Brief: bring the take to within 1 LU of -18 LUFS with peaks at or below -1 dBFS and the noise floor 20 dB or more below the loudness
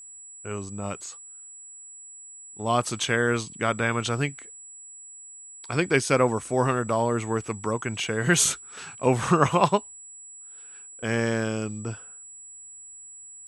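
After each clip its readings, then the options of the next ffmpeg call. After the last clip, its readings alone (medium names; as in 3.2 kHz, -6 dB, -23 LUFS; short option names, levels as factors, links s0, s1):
steady tone 7.8 kHz; tone level -42 dBFS; loudness -25.5 LUFS; peak level -4.5 dBFS; loudness target -18.0 LUFS
-> -af "bandreject=f=7800:w=30"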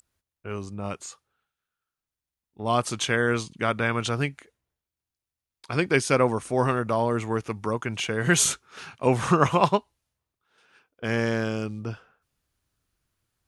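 steady tone not found; loudness -25.5 LUFS; peak level -4.0 dBFS; loudness target -18.0 LUFS
-> -af "volume=2.37,alimiter=limit=0.891:level=0:latency=1"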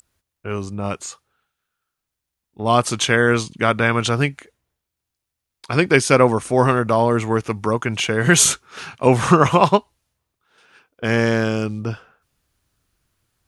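loudness -18.0 LUFS; peak level -1.0 dBFS; noise floor -82 dBFS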